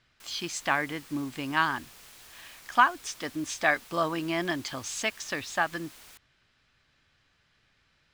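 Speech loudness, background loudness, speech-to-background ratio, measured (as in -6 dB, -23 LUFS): -29.5 LUFS, -49.0 LUFS, 19.5 dB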